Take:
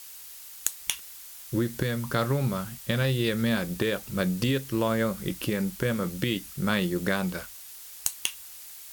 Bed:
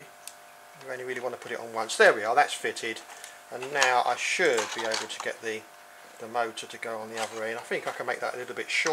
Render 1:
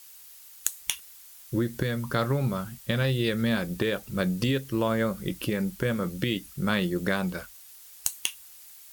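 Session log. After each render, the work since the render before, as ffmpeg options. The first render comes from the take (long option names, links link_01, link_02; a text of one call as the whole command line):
ffmpeg -i in.wav -af "afftdn=noise_reduction=6:noise_floor=-45" out.wav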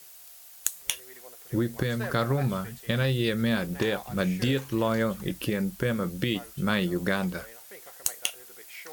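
ffmpeg -i in.wav -i bed.wav -filter_complex "[1:a]volume=-18dB[link_01];[0:a][link_01]amix=inputs=2:normalize=0" out.wav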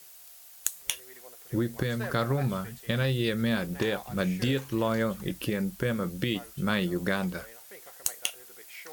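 ffmpeg -i in.wav -af "volume=-1.5dB" out.wav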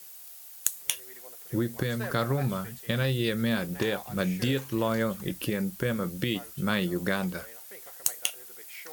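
ffmpeg -i in.wav -af "highpass=58,highshelf=frequency=9400:gain=5.5" out.wav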